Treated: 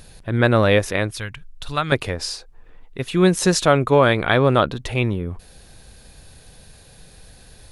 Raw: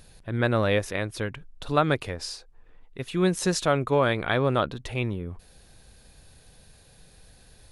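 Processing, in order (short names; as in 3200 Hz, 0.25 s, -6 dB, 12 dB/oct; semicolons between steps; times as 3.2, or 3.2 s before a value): 1.13–1.92 bell 380 Hz -14.5 dB 2.9 oct; gain +7.5 dB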